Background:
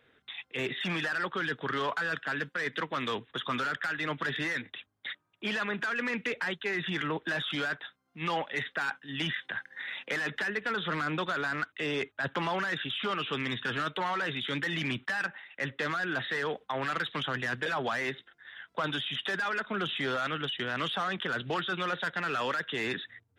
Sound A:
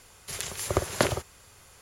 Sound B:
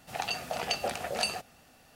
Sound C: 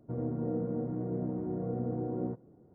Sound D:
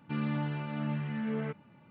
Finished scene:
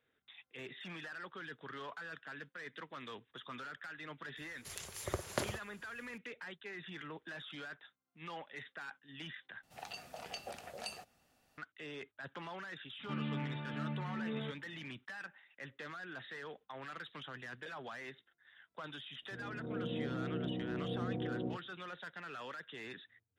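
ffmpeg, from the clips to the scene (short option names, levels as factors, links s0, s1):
-filter_complex "[0:a]volume=0.178[s0];[3:a]dynaudnorm=f=140:g=7:m=3.76[s1];[s0]asplit=2[s2][s3];[s2]atrim=end=9.634[s4];[2:a]atrim=end=1.95,asetpts=PTS-STARTPTS,volume=0.2[s5];[s3]atrim=start=11.576[s6];[1:a]atrim=end=1.81,asetpts=PTS-STARTPTS,volume=0.251,afade=t=in:d=0.004:c=hsin,afade=t=out:st=1.806:d=0.004:c=hsin,adelay=192717S[s7];[4:a]atrim=end=1.9,asetpts=PTS-STARTPTS,volume=0.473,afade=t=in:d=0.004:c=hsin,afade=t=out:st=1.896:d=0.004:c=hsin,adelay=12990[s8];[s1]atrim=end=2.74,asetpts=PTS-STARTPTS,volume=0.158,afade=t=in:d=0.004:c=hsin,afade=t=out:st=2.736:d=0.004:c=hsin,adelay=19220[s9];[s4][s5]acrossfade=d=0.004:c1=hsin:c2=hsin[s10];[s10][s6]acrossfade=d=0.004:c1=hsin:c2=hsin[s11];[s11][s7][s8][s9]amix=inputs=4:normalize=0"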